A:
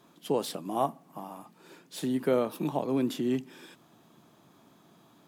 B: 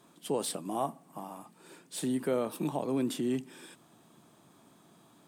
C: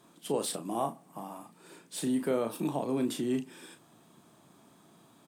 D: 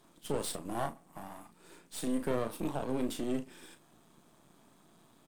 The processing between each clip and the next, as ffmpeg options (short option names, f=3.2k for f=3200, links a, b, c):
-filter_complex "[0:a]asplit=2[a][b];[b]alimiter=limit=-23dB:level=0:latency=1:release=33,volume=2.5dB[c];[a][c]amix=inputs=2:normalize=0,equalizer=f=8.6k:w=4:g=12.5,volume=-8.5dB"
-filter_complex "[0:a]asplit=2[a][b];[b]adelay=35,volume=-8dB[c];[a][c]amix=inputs=2:normalize=0"
-af "aeval=exprs='if(lt(val(0),0),0.251*val(0),val(0))':c=same"